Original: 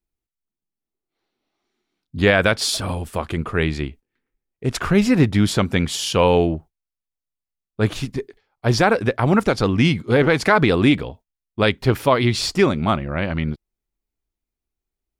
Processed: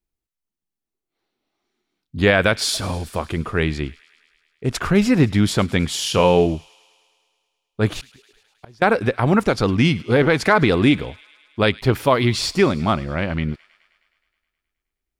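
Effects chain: 5.93–6.46 s: doubling 28 ms -8 dB; 7.99–8.82 s: inverted gate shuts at -22 dBFS, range -30 dB; on a send: feedback echo behind a high-pass 105 ms, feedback 71%, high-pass 1.9 kHz, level -19.5 dB

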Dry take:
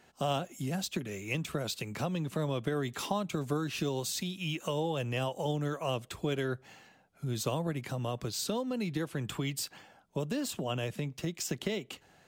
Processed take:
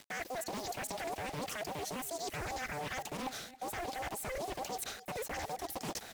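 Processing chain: every band turned upside down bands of 500 Hz; peak limiter -28 dBFS, peak gain reduction 10 dB; reverse; compression 16:1, threshold -48 dBFS, peak gain reduction 17 dB; reverse; word length cut 10-bit, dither none; on a send: delay 543 ms -16.5 dB; on the sum: speed mistake 7.5 ips tape played at 15 ips; loudspeaker Doppler distortion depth 0.64 ms; trim +12 dB

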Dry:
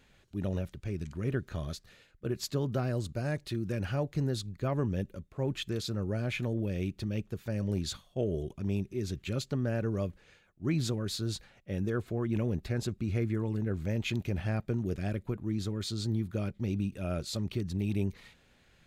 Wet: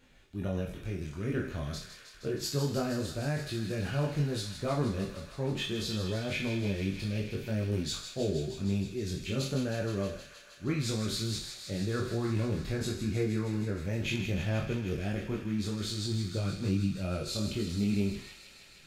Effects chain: spectral sustain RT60 0.48 s; chorus voices 6, 0.11 Hz, delay 24 ms, depth 4.3 ms; feedback echo behind a high-pass 157 ms, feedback 82%, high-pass 1.6 kHz, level -8.5 dB; trim +2.5 dB

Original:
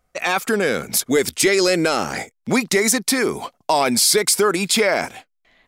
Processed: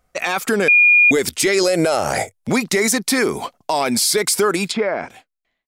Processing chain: fade out at the end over 1.37 s; 0.68–1.11 s: bleep 2.43 kHz -9 dBFS; 1.63–2.49 s: fifteen-band graphic EQ 100 Hz +10 dB, 250 Hz -5 dB, 630 Hz +11 dB, 10 kHz +9 dB; 3.23–4.16 s: compression, threshold -17 dBFS, peak gain reduction 5 dB; 4.68–5.10 s: low-pass that closes with the level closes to 1.6 kHz, closed at -18.5 dBFS; loudness maximiser +10 dB; trim -7 dB

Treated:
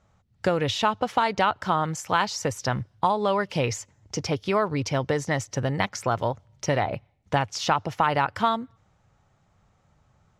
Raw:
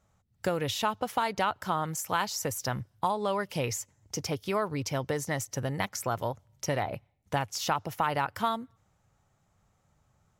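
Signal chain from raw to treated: low-pass 5.4 kHz 12 dB/octave; trim +6 dB

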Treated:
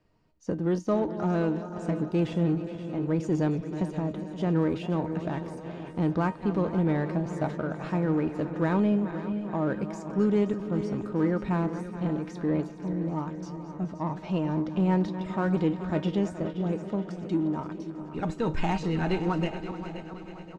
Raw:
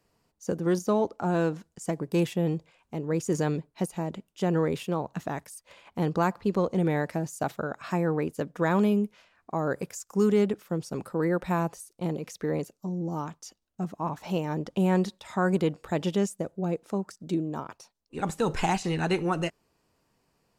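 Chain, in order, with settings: backward echo that repeats 212 ms, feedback 76%, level -13.5 dB; low-pass 4 kHz 12 dB/octave; bass shelf 260 Hz +8 dB; feedback comb 310 Hz, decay 0.18 s, harmonics all, mix 70%; in parallel at -5 dB: saturation -35 dBFS, distortion -7 dB; on the sum: feedback delay 525 ms, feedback 43%, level -13 dB; trim +2.5 dB

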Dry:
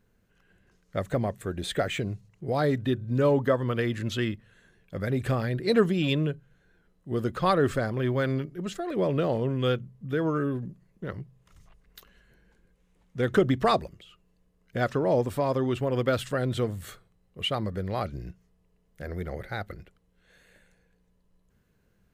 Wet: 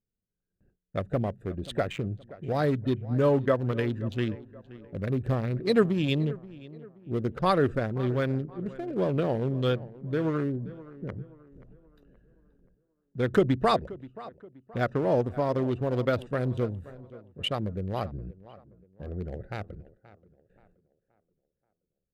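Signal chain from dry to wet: local Wiener filter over 41 samples; gate with hold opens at -55 dBFS; tape echo 527 ms, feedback 44%, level -17 dB, low-pass 2 kHz

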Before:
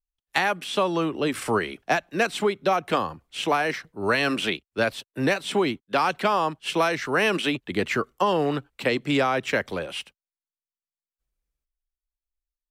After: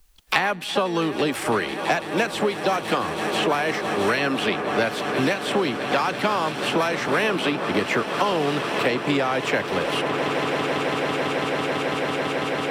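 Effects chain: harmony voices +5 st -12 dB; echo with a slow build-up 166 ms, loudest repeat 8, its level -18 dB; three bands compressed up and down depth 100%

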